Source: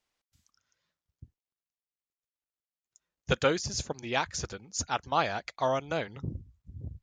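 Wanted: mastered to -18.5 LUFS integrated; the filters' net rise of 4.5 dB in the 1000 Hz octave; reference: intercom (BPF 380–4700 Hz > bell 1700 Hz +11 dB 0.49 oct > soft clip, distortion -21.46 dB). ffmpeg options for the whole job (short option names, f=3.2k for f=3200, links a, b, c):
-af "highpass=380,lowpass=4.7k,equalizer=f=1k:t=o:g=4,equalizer=f=1.7k:t=o:w=0.49:g=11,asoftclip=threshold=-10dB,volume=10.5dB"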